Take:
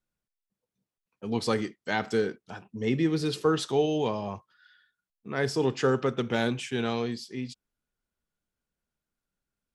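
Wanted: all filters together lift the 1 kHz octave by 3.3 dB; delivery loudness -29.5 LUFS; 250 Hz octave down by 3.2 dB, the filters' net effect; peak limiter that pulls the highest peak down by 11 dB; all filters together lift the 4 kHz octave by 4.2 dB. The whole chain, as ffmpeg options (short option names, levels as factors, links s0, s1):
-af "equalizer=f=250:t=o:g=-4.5,equalizer=f=1000:t=o:g=4.5,equalizer=f=4000:t=o:g=5,volume=1.5,alimiter=limit=0.126:level=0:latency=1"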